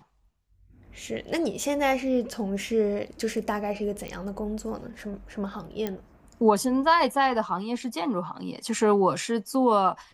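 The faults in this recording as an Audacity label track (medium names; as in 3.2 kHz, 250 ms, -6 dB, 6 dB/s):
4.080000	4.080000	pop -22 dBFS
5.870000	5.870000	pop -16 dBFS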